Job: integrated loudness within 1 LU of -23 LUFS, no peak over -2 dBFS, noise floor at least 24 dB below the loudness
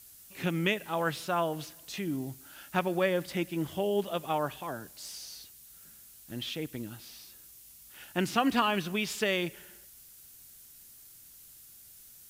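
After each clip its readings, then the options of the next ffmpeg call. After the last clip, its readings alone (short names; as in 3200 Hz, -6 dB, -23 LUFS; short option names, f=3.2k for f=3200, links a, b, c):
noise floor -54 dBFS; noise floor target -56 dBFS; loudness -32.0 LUFS; peak -14.0 dBFS; loudness target -23.0 LUFS
-> -af "afftdn=nr=6:nf=-54"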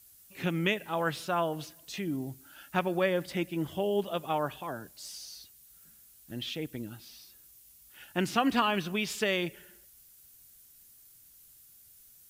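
noise floor -58 dBFS; loudness -32.0 LUFS; peak -14.0 dBFS; loudness target -23.0 LUFS
-> -af "volume=9dB"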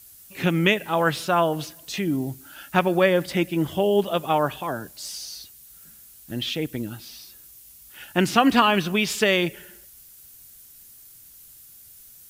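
loudness -23.0 LUFS; peak -5.0 dBFS; noise floor -49 dBFS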